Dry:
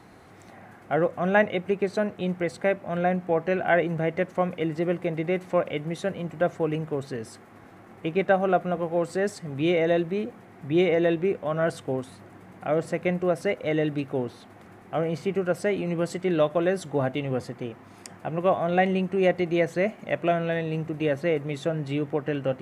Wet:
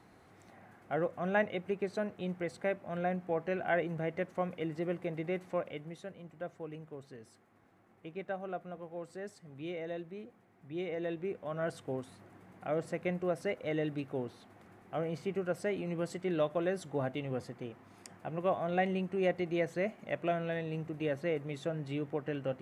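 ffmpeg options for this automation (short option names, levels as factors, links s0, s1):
-af "volume=0.891,afade=t=out:st=5.37:d=0.73:silence=0.398107,afade=t=in:st=10.75:d=1.2:silence=0.375837"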